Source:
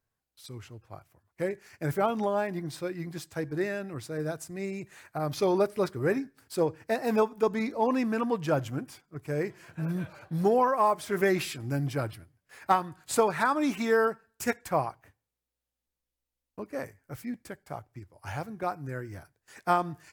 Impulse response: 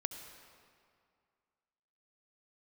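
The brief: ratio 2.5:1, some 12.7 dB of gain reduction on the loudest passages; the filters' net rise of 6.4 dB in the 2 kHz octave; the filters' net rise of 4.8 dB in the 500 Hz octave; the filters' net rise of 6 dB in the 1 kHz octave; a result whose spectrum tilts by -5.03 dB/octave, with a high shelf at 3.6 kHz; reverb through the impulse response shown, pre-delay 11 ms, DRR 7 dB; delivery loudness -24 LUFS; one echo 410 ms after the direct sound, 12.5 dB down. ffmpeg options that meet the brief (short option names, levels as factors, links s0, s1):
-filter_complex "[0:a]equalizer=f=500:t=o:g=4.5,equalizer=f=1000:t=o:g=4.5,equalizer=f=2000:t=o:g=5.5,highshelf=f=3600:g=3,acompressor=threshold=0.0224:ratio=2.5,aecho=1:1:410:0.237,asplit=2[s0][s1];[1:a]atrim=start_sample=2205,adelay=11[s2];[s1][s2]afir=irnorm=-1:irlink=0,volume=0.447[s3];[s0][s3]amix=inputs=2:normalize=0,volume=3.16"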